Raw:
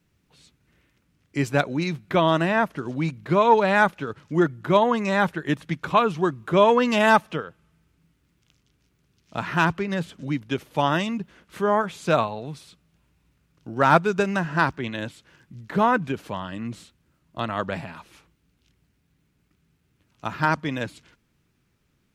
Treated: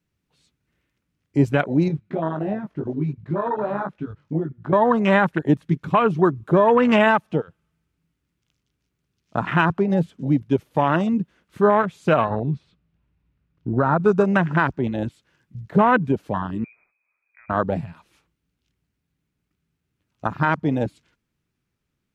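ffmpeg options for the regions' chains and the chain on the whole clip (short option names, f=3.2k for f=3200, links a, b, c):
-filter_complex "[0:a]asettb=1/sr,asplit=3[a][b][c];[a]atrim=end=1.884[d];[b]atrim=start=1.88:end=4.73,asetpts=PTS-STARTPTS,afade=t=in:d=0.004:c=qsin,afade=t=out:st=2.846:d=0.004:c=qsin,aemphasis=mode=reproduction:type=50fm,acompressor=threshold=-23dB:ratio=10:attack=3.2:release=140:knee=1:detection=peak,flanger=delay=18.5:depth=2:speed=2.8[e];[c]atrim=start=4.726[f];[d][e]acrossfade=d=0.004:c1=hsin:c2=qsin[g];[g][f]acrossfade=d=0.004:c1=qsin:c2=hsin,asettb=1/sr,asplit=3[h][i][j];[h]atrim=end=12.304[k];[i]atrim=start=12.3:end=14,asetpts=PTS-STARTPTS,afade=t=in:d=0.004:c=qsin,afade=t=out:st=1.696:d=0.004:c=qsin,lowpass=3.3k,lowshelf=f=200:g=8,acompressor=threshold=-20dB:ratio=10:attack=3.2:release=140:knee=1:detection=peak[l];[j]atrim=start=13.996[m];[k][l]acrossfade=d=0.004:c1=hsin:c2=qsin[n];[n][m]acrossfade=d=0.004:c1=qsin:c2=hsin,asettb=1/sr,asplit=3[o][p][q];[o]atrim=end=16.644[r];[p]atrim=start=16.64:end=17.5,asetpts=PTS-STARTPTS,afade=t=in:d=0.004:c=qsin,afade=t=out:st=0.856:d=0.004:c=qsin,acompressor=threshold=-40dB:ratio=4:attack=3.2:release=140:knee=1:detection=peak,lowpass=f=2.2k:t=q:w=0.5098,lowpass=f=2.2k:t=q:w=0.6013,lowpass=f=2.2k:t=q:w=0.9,lowpass=f=2.2k:t=q:w=2.563,afreqshift=-2600[s];[q]atrim=start=17.496[t];[r][s]acrossfade=d=0.004:c1=hsin:c2=qsin[u];[u][t]acrossfade=d=0.004:c1=qsin:c2=hsin,afwtdn=0.0447,alimiter=limit=-14dB:level=0:latency=1:release=149,volume=7.5dB"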